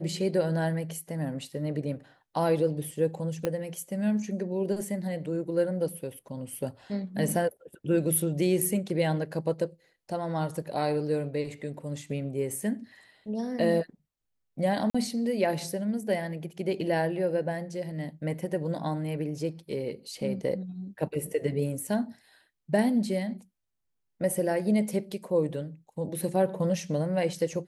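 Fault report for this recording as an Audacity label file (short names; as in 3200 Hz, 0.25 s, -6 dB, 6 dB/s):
3.450000	3.450000	pop -15 dBFS
14.900000	14.950000	gap 45 ms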